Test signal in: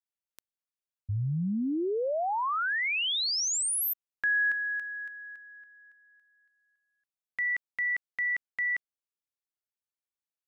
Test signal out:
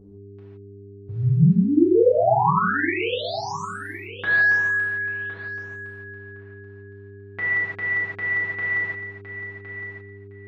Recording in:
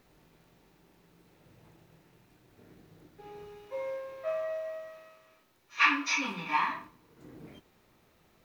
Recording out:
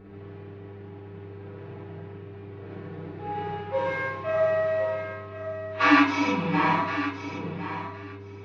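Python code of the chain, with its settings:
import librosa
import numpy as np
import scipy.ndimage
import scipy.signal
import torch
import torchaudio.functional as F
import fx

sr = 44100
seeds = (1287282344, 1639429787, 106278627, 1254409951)

p1 = fx.envelope_flatten(x, sr, power=0.6)
p2 = scipy.signal.sosfilt(scipy.signal.butter(2, 61.0, 'highpass', fs=sr, output='sos'), p1)
p3 = fx.dynamic_eq(p2, sr, hz=2200.0, q=0.93, threshold_db=-40.0, ratio=6.0, max_db=-4)
p4 = p3 + 0.88 * np.pad(p3, (int(6.2 * sr / 1000.0), 0))[:len(p3)]
p5 = fx.rider(p4, sr, range_db=4, speed_s=0.5)
p6 = fx.dmg_buzz(p5, sr, base_hz=100.0, harmonics=4, level_db=-52.0, tilt_db=-2, odd_only=False)
p7 = fx.env_lowpass(p6, sr, base_hz=2800.0, full_db=-24.5)
p8 = fx.spacing_loss(p7, sr, db_at_10k=39)
p9 = p8 + fx.echo_feedback(p8, sr, ms=1062, feedback_pct=17, wet_db=-11, dry=0)
p10 = fx.rev_gated(p9, sr, seeds[0], gate_ms=190, shape='flat', drr_db=-7.5)
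y = p10 * 10.0 ** (4.0 / 20.0)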